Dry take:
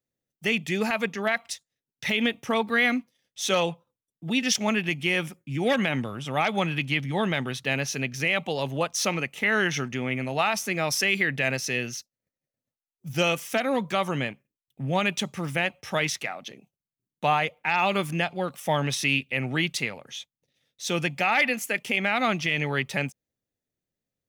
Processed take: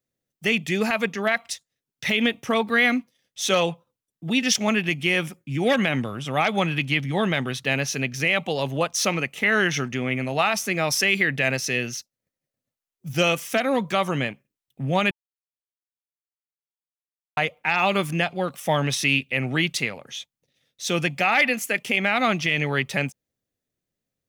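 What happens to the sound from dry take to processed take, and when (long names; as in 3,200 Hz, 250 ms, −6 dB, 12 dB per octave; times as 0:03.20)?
0:15.11–0:17.37: silence
whole clip: notch filter 880 Hz, Q 22; level +3 dB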